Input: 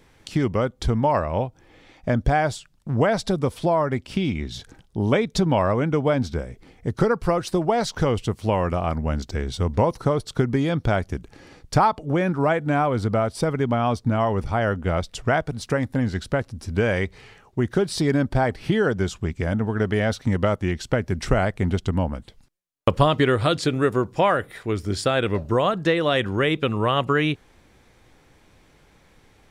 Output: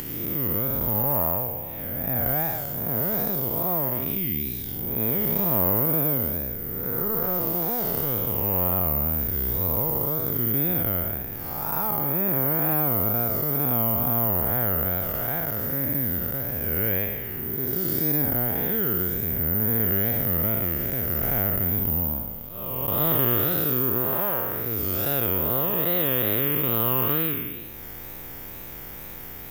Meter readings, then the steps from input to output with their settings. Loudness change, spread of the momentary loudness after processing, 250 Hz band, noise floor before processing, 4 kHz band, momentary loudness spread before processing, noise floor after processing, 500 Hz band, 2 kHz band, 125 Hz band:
+1.0 dB, 8 LU, −6.0 dB, −57 dBFS, −9.0 dB, 7 LU, −38 dBFS, −8.0 dB, −8.5 dB, −5.5 dB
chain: spectrum smeared in time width 370 ms
notch filter 4,200 Hz, Q 7.1
in parallel at +0.5 dB: downward compressor, threshold −37 dBFS, peak gain reduction 16.5 dB
on the sum: tape wow and flutter 120 cents
upward compression, threshold −26 dBFS
bad sample-rate conversion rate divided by 3×, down none, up zero stuff
level −4.5 dB

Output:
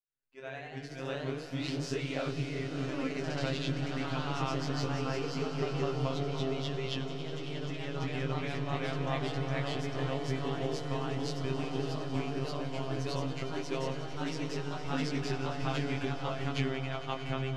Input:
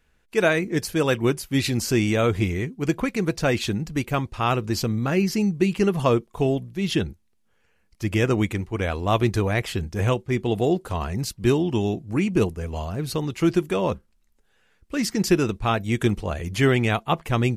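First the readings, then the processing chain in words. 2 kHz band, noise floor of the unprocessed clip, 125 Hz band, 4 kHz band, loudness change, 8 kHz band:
−11.0 dB, −65 dBFS, −10.0 dB, −7.5 dB, −11.5 dB, −14.5 dB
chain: fade in at the beginning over 4.88 s
chorus effect 1.6 Hz, delay 18 ms, depth 5.5 ms
downward compressor, threshold −32 dBFS, peak gain reduction 16 dB
phases set to zero 133 Hz
Chebyshev low-pass filter 4,100 Hz, order 2
feedback delay with all-pass diffusion 602 ms, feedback 64%, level −13 dB
delay with pitch and tempo change per echo 115 ms, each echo +1 semitone, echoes 3
echo that builds up and dies away 91 ms, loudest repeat 5, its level −16 dB
level +2 dB

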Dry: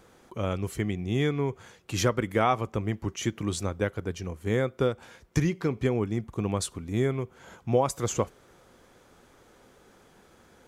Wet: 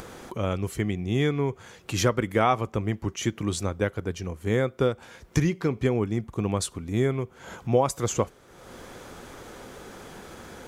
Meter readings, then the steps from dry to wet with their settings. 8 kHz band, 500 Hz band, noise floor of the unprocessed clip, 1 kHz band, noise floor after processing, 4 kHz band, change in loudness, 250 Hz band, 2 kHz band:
+2.0 dB, +2.0 dB, −58 dBFS, +2.0 dB, −53 dBFS, +2.0 dB, +2.0 dB, +2.0 dB, +2.0 dB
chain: upward compression, threshold −33 dBFS
level +2 dB

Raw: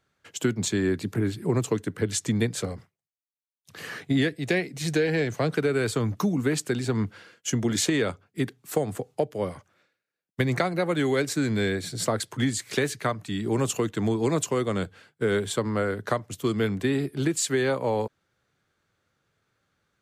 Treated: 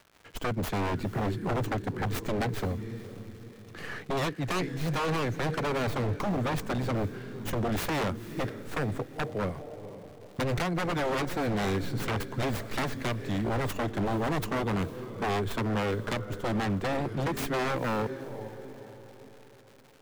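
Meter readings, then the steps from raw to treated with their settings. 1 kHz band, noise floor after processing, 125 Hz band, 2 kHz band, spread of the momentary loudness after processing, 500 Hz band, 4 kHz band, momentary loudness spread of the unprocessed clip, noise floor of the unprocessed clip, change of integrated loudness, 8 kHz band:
+2.0 dB, −51 dBFS, −2.5 dB, −3.5 dB, 12 LU, −5.5 dB, −5.0 dB, 7 LU, below −85 dBFS, −4.5 dB, −13.0 dB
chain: stylus tracing distortion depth 0.43 ms
low-shelf EQ 80 Hz +9 dB
surface crackle 290 per second −39 dBFS
high-shelf EQ 3,600 Hz −11 dB
feedback delay with all-pass diffusion 482 ms, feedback 45%, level −15 dB
wave folding −23.5 dBFS

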